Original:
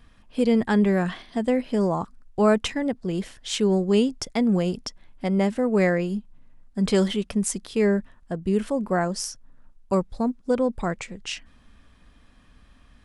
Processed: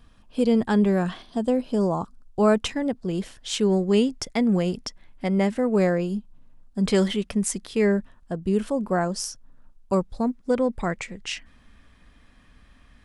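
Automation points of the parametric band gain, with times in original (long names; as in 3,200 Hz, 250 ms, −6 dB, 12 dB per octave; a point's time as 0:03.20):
parametric band 2,000 Hz 0.46 octaves
−7 dB
from 0:01.23 −14.5 dB
from 0:02.43 −3.5 dB
from 0:03.61 +2.5 dB
from 0:05.76 −8.5 dB
from 0:06.87 +2.5 dB
from 0:07.92 −4 dB
from 0:10.23 +4.5 dB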